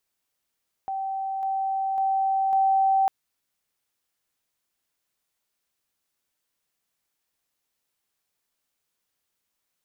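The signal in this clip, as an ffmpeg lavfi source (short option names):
-f lavfi -i "aevalsrc='pow(10,(-26.5+3*floor(t/0.55))/20)*sin(2*PI*774*t)':d=2.2:s=44100"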